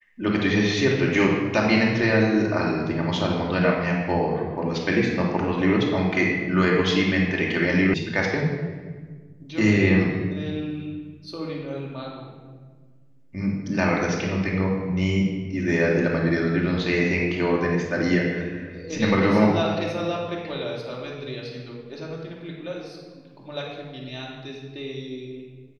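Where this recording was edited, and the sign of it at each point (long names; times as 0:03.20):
0:07.94: cut off before it has died away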